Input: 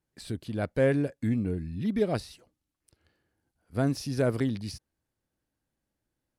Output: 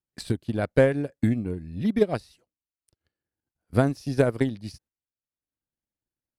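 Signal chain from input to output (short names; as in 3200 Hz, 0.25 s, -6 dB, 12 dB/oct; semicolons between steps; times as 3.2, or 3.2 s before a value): gate -55 dBFS, range -13 dB; transient shaper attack +10 dB, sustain -8 dB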